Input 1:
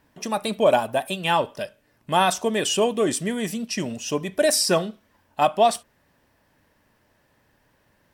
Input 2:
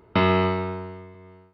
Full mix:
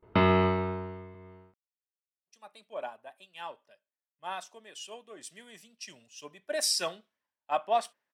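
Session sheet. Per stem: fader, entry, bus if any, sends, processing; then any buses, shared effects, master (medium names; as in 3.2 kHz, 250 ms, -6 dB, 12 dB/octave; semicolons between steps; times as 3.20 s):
5.07 s -18 dB -> 5.50 s -8.5 dB, 2.10 s, no send, high-pass 1.1 kHz 6 dB/octave; three bands expanded up and down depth 100%
-3.0 dB, 0.00 s, no send, gate with hold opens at -45 dBFS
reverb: none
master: low-pass 3.5 kHz 6 dB/octave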